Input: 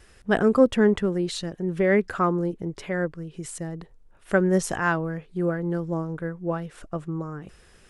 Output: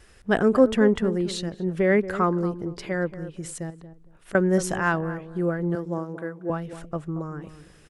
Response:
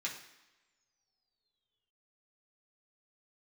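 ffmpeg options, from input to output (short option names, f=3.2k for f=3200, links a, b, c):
-filter_complex "[0:a]asettb=1/sr,asplit=3[a][b][c];[a]atrim=end=2.274[d];[b]atrim=start=2.27:end=2.99,asetpts=PTS-STARTPTS,afade=t=in:d=0.004:c=qsin,afade=t=out:st=0.716:d=0.004:c=qsin,equalizer=f=4.7k:w=5.9:g=10.5[e];[c]atrim=start=2.986[f];[d][e]acrossfade=d=0.004:c1=hsin:c2=qsin[g];[g][f]acrossfade=d=0.004:c1=qsin:c2=hsin,asettb=1/sr,asplit=3[h][i][j];[h]atrim=end=3.704[k];[i]atrim=start=3.7:end=4.35,asetpts=PTS-STARTPTS,afade=t=in:d=0.004:c=qsin,afade=t=out:st=0.646:d=0.004:c=qsin,acompressor=threshold=-43dB:ratio=6[l];[j]atrim=start=4.346[m];[k][l]acrossfade=d=0.004:c1=hsin:c2=qsin[n];[n][m]acrossfade=d=0.004:c1=qsin:c2=hsin,asettb=1/sr,asplit=3[o][p][q];[o]atrim=end=5.754[r];[p]atrim=start=5.75:end=6.5,asetpts=PTS-STARTPTS,afade=t=in:d=0.004:c=qsin,afade=t=out:st=0.746:d=0.004:c=qsin,highpass=230[s];[q]atrim=start=6.496[t];[r][s]acrossfade=d=0.004:c1=hsin:c2=qsin[u];[u][t]acrossfade=d=0.004:c1=qsin:c2=hsin,asplit=2[v][w];[w]adelay=230,lowpass=f=980:p=1,volume=-12dB,asplit=2[x][y];[y]adelay=230,lowpass=f=980:p=1,volume=0.22,asplit=2[z][aa];[aa]adelay=230,lowpass=f=980:p=1,volume=0.22[ab];[x][z][ab]amix=inputs=3:normalize=0[ac];[v][ac]amix=inputs=2:normalize=0"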